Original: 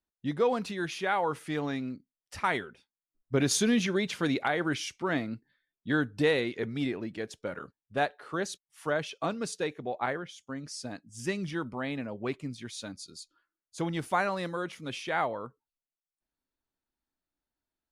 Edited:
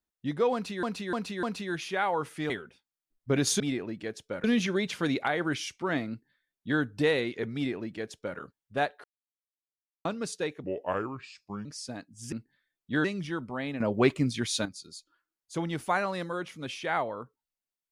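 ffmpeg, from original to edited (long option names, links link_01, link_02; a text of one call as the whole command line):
ffmpeg -i in.wav -filter_complex "[0:a]asplit=15[link_01][link_02][link_03][link_04][link_05][link_06][link_07][link_08][link_09][link_10][link_11][link_12][link_13][link_14][link_15];[link_01]atrim=end=0.832[link_16];[link_02]atrim=start=0.528:end=0.832[link_17];[link_03]atrim=start=0.528:end=0.832[link_18];[link_04]atrim=start=0.528:end=1.602[link_19];[link_05]atrim=start=2.538:end=3.642[link_20];[link_06]atrim=start=6.738:end=7.582[link_21];[link_07]atrim=start=3.638:end=8.24,asetpts=PTS-STARTPTS,afade=type=out:start_time=4.598:duration=0.004:curve=hsin[link_22];[link_08]atrim=start=8.24:end=9.25,asetpts=PTS-STARTPTS,volume=0[link_23];[link_09]atrim=start=9.25:end=9.844,asetpts=PTS-STARTPTS,afade=type=in:duration=0.004:curve=hsin[link_24];[link_10]atrim=start=9.84:end=10.61,asetpts=PTS-STARTPTS,asetrate=33516,aresample=44100,atrim=end_sample=44680,asetpts=PTS-STARTPTS[link_25];[link_11]atrim=start=10.606:end=11.282[link_26];[link_12]atrim=start=5.288:end=6.012[link_27];[link_13]atrim=start=11.278:end=12.042[link_28];[link_14]atrim=start=12.038:end=12.892,asetpts=PTS-STARTPTS,volume=10.5dB[link_29];[link_15]atrim=start=12.888[link_30];[link_16][link_17]acrossfade=duration=0.004:curve1=hsin:curve2=hsin[link_31];[link_31][link_18]acrossfade=duration=0.004:curve1=hsin:curve2=hsin[link_32];[link_32][link_19]acrossfade=duration=0.004:curve1=hsin:curve2=hsin[link_33];[link_33][link_20]acrossfade=duration=0.004:curve1=hsin:curve2=hsin[link_34];[link_34][link_21]acrossfade=duration=0.004:curve1=hsin:curve2=hsin[link_35];[link_22][link_23][link_24]concat=n=3:v=0:a=1[link_36];[link_35][link_36]acrossfade=duration=0.004:curve1=hsin:curve2=hsin[link_37];[link_37][link_25]acrossfade=duration=0.004:curve1=hsin:curve2=hsin[link_38];[link_38][link_26]acrossfade=duration=0.004:curve1=hsin:curve2=hsin[link_39];[link_39][link_27]acrossfade=duration=0.004:curve1=hsin:curve2=hsin[link_40];[link_40][link_28]acrossfade=duration=0.004:curve1=hsin:curve2=hsin[link_41];[link_41][link_29]acrossfade=duration=0.004:curve1=hsin:curve2=hsin[link_42];[link_42][link_30]acrossfade=duration=0.004:curve1=hsin:curve2=hsin" out.wav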